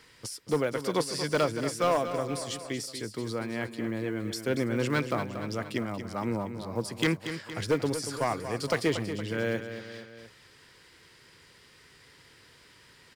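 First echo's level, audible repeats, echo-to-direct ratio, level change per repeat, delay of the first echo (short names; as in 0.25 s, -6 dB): -10.0 dB, 3, -8.5 dB, -5.0 dB, 0.233 s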